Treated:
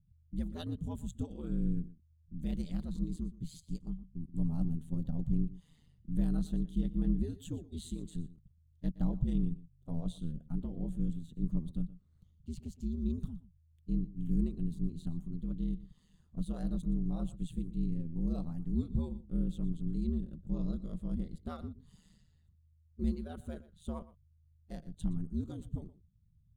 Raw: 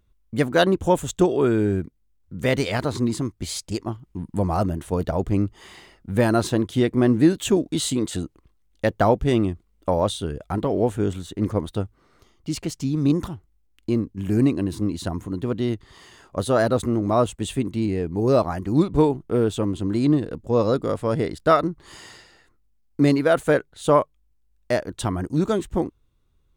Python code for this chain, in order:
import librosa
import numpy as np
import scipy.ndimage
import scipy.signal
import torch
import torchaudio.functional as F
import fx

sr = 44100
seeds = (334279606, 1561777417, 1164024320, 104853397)

p1 = fx.spec_quant(x, sr, step_db=15)
p2 = fx.curve_eq(p1, sr, hz=(110.0, 370.0, 2300.0, 3400.0), db=(0, -26, -30, -19))
p3 = p2 * np.sin(2.0 * np.pi * 80.0 * np.arange(len(p2)) / sr)
p4 = fx.peak_eq(p3, sr, hz=5300.0, db=-10.0, octaves=0.29)
y = p4 + fx.echo_single(p4, sr, ms=119, db=-17.5, dry=0)